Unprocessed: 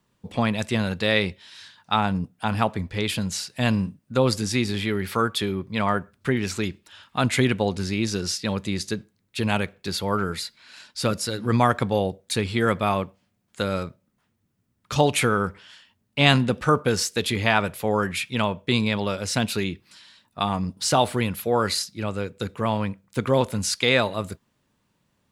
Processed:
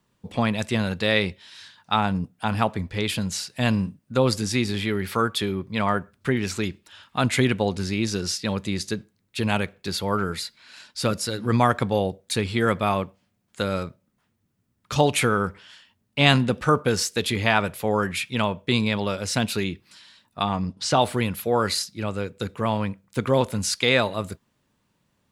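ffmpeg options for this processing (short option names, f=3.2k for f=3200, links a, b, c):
-filter_complex "[0:a]asettb=1/sr,asplit=3[a][b][c];[a]atrim=end=20.424[d];[b]atrim=start=20.42:end=21.02,asetpts=PTS-STARTPTS,afade=t=in:d=0.004:c=qsin,afade=t=out:st=0.596:d=0.004:c=qsin,lowpass=6.2k[e];[c]atrim=start=21.016[f];[d][e]acrossfade=d=0.004:c1=hsin:c2=qsin[g];[g][f]acrossfade=d=0.004:c1=qsin:c2=hsin"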